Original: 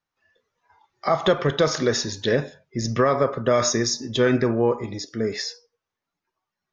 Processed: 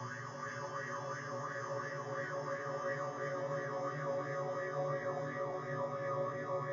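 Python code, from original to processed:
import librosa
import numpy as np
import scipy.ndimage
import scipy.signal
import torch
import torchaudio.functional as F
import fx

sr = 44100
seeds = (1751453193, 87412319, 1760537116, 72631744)

p1 = fx.spec_dropout(x, sr, seeds[0], share_pct=31)
p2 = fx.rider(p1, sr, range_db=10, speed_s=0.5)
p3 = fx.peak_eq(p2, sr, hz=100.0, db=10.5, octaves=2.7)
p4 = fx.resonator_bank(p3, sr, root=47, chord='minor', decay_s=0.78)
p5 = fx.paulstretch(p4, sr, seeds[1], factor=43.0, window_s=0.25, from_s=3.01)
p6 = fx.graphic_eq_31(p5, sr, hz=(400, 1250, 6300), db=(10, -5, 8))
p7 = p6 + fx.echo_single(p6, sr, ms=480, db=-4.0, dry=0)
p8 = fx.bell_lfo(p7, sr, hz=2.9, low_hz=800.0, high_hz=1900.0, db=12)
y = p8 * librosa.db_to_amplitude(-5.0)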